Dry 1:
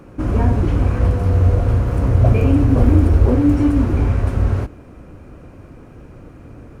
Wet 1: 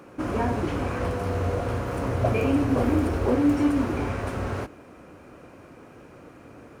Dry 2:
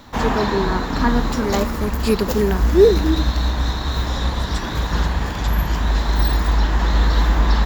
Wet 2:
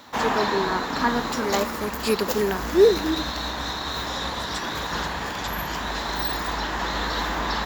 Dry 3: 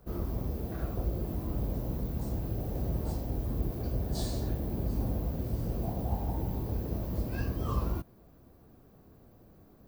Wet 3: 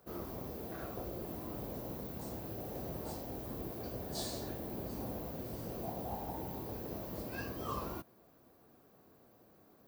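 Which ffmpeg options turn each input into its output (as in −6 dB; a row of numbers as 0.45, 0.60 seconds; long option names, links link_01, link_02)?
-af "highpass=frequency=480:poles=1"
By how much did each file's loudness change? −9.5, −5.0, −7.5 LU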